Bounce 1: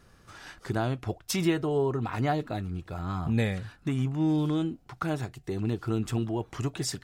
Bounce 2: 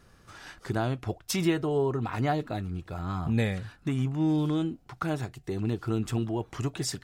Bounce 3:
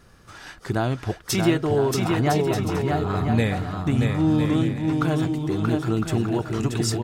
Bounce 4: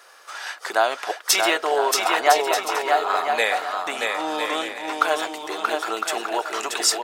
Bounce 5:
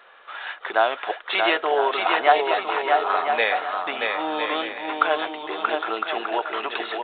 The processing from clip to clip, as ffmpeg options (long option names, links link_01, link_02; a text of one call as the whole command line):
ffmpeg -i in.wav -af anull out.wav
ffmpeg -i in.wav -af "aecho=1:1:630|1008|1235|1371|1453:0.631|0.398|0.251|0.158|0.1,volume=5dB" out.wav
ffmpeg -i in.wav -af "highpass=frequency=580:width=0.5412,highpass=frequency=580:width=1.3066,volume=9dB" out.wav
ffmpeg -i in.wav -ar 8000 -c:a pcm_alaw out.wav